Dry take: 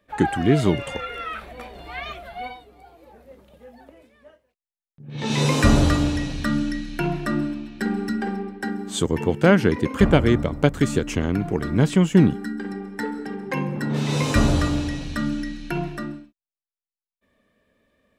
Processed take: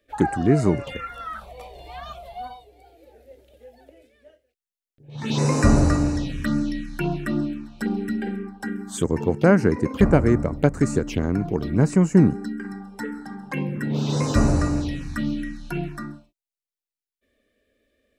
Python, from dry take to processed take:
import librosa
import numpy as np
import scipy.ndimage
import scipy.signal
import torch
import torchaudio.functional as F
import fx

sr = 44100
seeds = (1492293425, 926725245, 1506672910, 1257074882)

y = fx.env_phaser(x, sr, low_hz=160.0, high_hz=3300.0, full_db=-18.0)